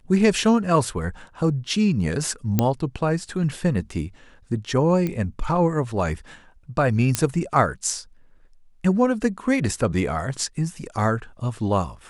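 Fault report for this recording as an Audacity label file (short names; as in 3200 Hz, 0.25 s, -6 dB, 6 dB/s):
2.590000	2.590000	pop -5 dBFS
5.070000	5.070000	pop -14 dBFS
7.150000	7.150000	pop -4 dBFS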